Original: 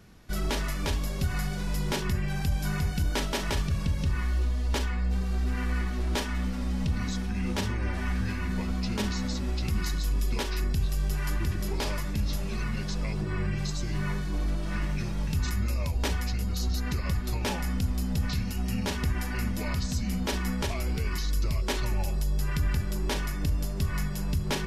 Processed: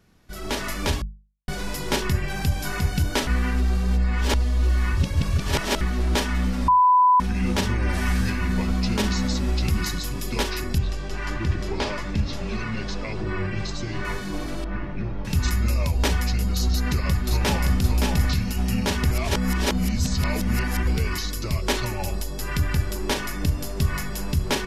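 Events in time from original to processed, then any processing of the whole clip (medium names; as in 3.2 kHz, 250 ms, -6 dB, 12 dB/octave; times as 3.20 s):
1.02–1.48 s: mute
3.27–5.81 s: reverse
6.68–7.20 s: bleep 998 Hz -19.5 dBFS
7.89–8.30 s: treble shelf 5 kHz +9.5 dB
10.78–14.05 s: distance through air 97 m
14.64–15.25 s: tape spacing loss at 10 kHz 41 dB
16.73–17.75 s: echo throw 570 ms, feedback 10%, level -3 dB
19.11–20.87 s: reverse
whole clip: hum notches 50/100/150/200 Hz; level rider gain up to 12.5 dB; trim -5.5 dB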